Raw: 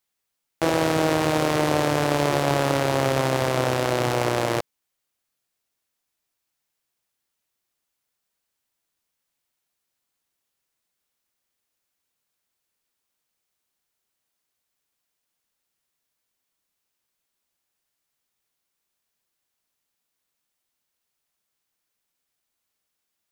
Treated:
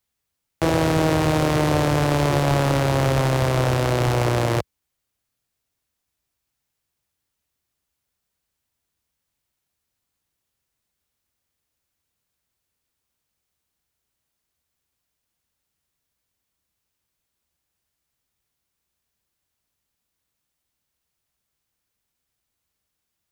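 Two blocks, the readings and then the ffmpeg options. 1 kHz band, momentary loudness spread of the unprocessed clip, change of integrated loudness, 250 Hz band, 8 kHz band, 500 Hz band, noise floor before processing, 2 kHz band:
+0.5 dB, 3 LU, +2.0 dB, +2.5 dB, 0.0 dB, +0.5 dB, -80 dBFS, 0.0 dB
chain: -filter_complex "[0:a]equalizer=f=64:w=0.48:g=14,acrossover=split=370[s0][s1];[s0]aeval=exprs='clip(val(0),-1,0.112)':c=same[s2];[s2][s1]amix=inputs=2:normalize=0"

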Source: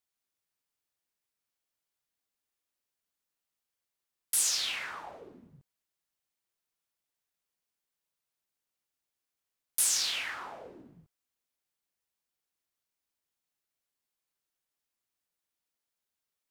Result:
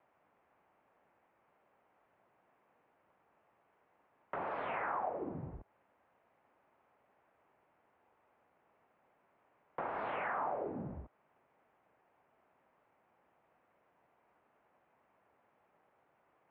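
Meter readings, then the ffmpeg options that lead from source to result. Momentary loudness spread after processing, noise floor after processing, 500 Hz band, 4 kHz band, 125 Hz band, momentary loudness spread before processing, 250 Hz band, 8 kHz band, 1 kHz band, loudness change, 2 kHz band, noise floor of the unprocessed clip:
13 LU, -75 dBFS, +10.5 dB, -29.0 dB, +12.0 dB, 19 LU, +10.0 dB, under -40 dB, +8.0 dB, -11.0 dB, -5.0 dB, under -85 dBFS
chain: -filter_complex "[0:a]equalizer=f=860:t=o:w=1.6:g=9.5,acrossover=split=1300[s0][s1];[s0]acontrast=85[s2];[s1]alimiter=level_in=5.62:limit=0.0631:level=0:latency=1,volume=0.178[s3];[s2][s3]amix=inputs=2:normalize=0,acompressor=threshold=0.00251:ratio=4,highpass=f=180:t=q:w=0.5412,highpass=f=180:t=q:w=1.307,lowpass=f=2600:t=q:w=0.5176,lowpass=f=2600:t=q:w=0.7071,lowpass=f=2600:t=q:w=1.932,afreqshift=-97,volume=4.47"

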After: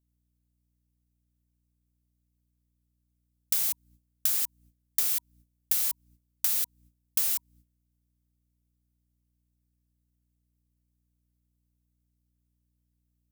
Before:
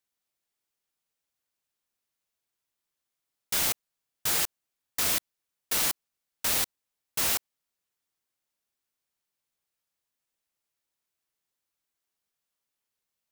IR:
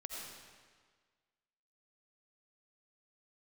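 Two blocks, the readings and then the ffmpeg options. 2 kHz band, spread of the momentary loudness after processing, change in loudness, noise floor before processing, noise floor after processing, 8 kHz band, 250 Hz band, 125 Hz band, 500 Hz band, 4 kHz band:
-11.0 dB, 7 LU, +0.5 dB, under -85 dBFS, -76 dBFS, -2.0 dB, under -10 dB, under -10 dB, under -10 dB, -7.0 dB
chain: -af "bandreject=f=960:w=26,aeval=exprs='val(0)+0.00158*(sin(2*PI*60*n/s)+sin(2*PI*2*60*n/s)/2+sin(2*PI*3*60*n/s)/3+sin(2*PI*4*60*n/s)/4+sin(2*PI*5*60*n/s)/5)':c=same,acompressor=threshold=0.0141:ratio=10,crystalizer=i=3.5:c=0,agate=range=0.141:threshold=0.002:ratio=16:detection=peak,volume=0.794"

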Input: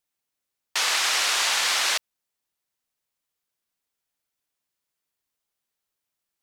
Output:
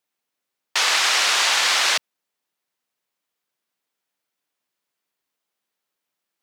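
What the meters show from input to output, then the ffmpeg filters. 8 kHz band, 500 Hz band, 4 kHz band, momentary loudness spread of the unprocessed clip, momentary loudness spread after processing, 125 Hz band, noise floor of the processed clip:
+2.5 dB, +5.0 dB, +4.5 dB, 6 LU, 6 LU, no reading, -83 dBFS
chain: -filter_complex "[0:a]highpass=180,asplit=2[s0][s1];[s1]adynamicsmooth=sensitivity=4.5:basefreq=6000,volume=0.794[s2];[s0][s2]amix=inputs=2:normalize=0"

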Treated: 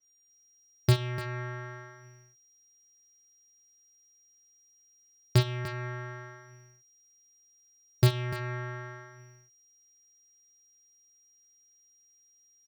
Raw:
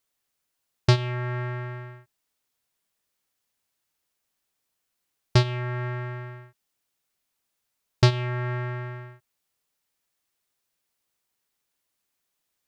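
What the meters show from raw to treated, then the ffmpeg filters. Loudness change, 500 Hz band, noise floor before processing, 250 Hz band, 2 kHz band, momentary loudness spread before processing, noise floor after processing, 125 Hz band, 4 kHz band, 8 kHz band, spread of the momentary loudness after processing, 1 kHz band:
-4.5 dB, -5.0 dB, -80 dBFS, -4.0 dB, -4.5 dB, 17 LU, -64 dBFS, -4.0 dB, -5.0 dB, no reading, 21 LU, -6.5 dB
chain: -filter_complex "[0:a]highpass=f=63:w=0.5412,highpass=f=63:w=1.3066,aeval=exprs='val(0)+0.00112*sin(2*PI*5700*n/s)':c=same,asplit=2[s0][s1];[s1]aeval=exprs='(mod(1.68*val(0)+1,2)-1)/1.68':c=same,volume=0.316[s2];[s0][s2]amix=inputs=2:normalize=0,equalizer=f=880:t=o:w=1.4:g=-6,aecho=1:1:45|296:0.168|0.237,adynamicequalizer=threshold=0.00355:dfrequency=3200:dqfactor=0.7:tfrequency=3200:tqfactor=0.7:attack=5:release=100:ratio=0.375:range=2.5:mode=cutabove:tftype=highshelf,volume=0.562"

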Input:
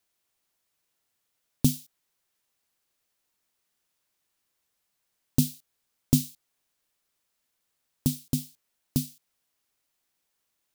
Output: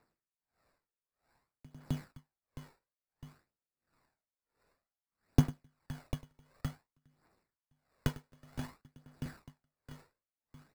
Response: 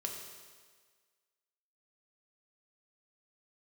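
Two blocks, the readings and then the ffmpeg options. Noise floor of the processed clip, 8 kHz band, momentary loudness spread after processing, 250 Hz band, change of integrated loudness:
under -85 dBFS, -20.0 dB, 25 LU, -9.5 dB, -10.0 dB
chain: -filter_complex "[0:a]acrossover=split=150[s0][s1];[s1]acompressor=threshold=0.0282:ratio=6[s2];[s0][s2]amix=inputs=2:normalize=0,aecho=1:1:100|260|516|925.6|1581:0.631|0.398|0.251|0.158|0.1,acrusher=samples=14:mix=1:aa=0.000001,aphaser=in_gain=1:out_gain=1:delay=2.3:decay=0.39:speed=0.55:type=triangular,aeval=exprs='val(0)*pow(10,-34*(0.5-0.5*cos(2*PI*1.5*n/s))/20)':c=same,volume=1.12"

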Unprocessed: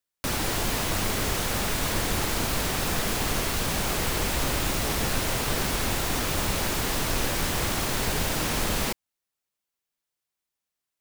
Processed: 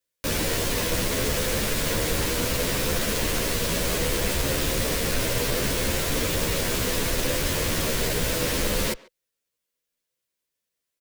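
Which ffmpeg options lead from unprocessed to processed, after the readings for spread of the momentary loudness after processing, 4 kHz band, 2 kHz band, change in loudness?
0 LU, +1.5 dB, +1.0 dB, +1.5 dB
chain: -filter_complex "[0:a]equalizer=f=500:t=o:w=0.33:g=8,equalizer=f=800:t=o:w=0.33:g=-10,equalizer=f=1250:t=o:w=0.33:g=-5,asoftclip=type=hard:threshold=0.0668,asplit=2[s0][s1];[s1]adelay=140,highpass=300,lowpass=3400,asoftclip=type=hard:threshold=0.0224,volume=0.126[s2];[s0][s2]amix=inputs=2:normalize=0,asplit=2[s3][s4];[s4]adelay=11.4,afreqshift=0.68[s5];[s3][s5]amix=inputs=2:normalize=1,volume=2"

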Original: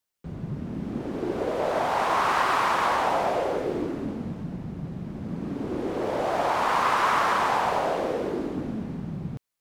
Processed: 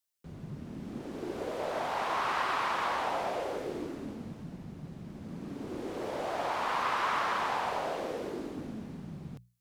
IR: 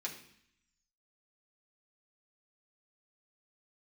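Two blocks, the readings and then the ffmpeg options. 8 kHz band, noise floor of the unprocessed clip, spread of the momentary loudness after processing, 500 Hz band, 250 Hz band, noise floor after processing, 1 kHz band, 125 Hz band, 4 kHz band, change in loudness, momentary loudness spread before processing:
-7.5 dB, -39 dBFS, 14 LU, -8.5 dB, -9.0 dB, -50 dBFS, -8.0 dB, -9.5 dB, -5.5 dB, -8.0 dB, 13 LU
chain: -filter_complex "[0:a]acrossover=split=4500[s0][s1];[s1]acompressor=threshold=0.00224:ratio=4:attack=1:release=60[s2];[s0][s2]amix=inputs=2:normalize=0,highshelf=f=3000:g=9,bandreject=f=60:t=h:w=6,bandreject=f=120:t=h:w=6,bandreject=f=180:t=h:w=6,volume=0.355"

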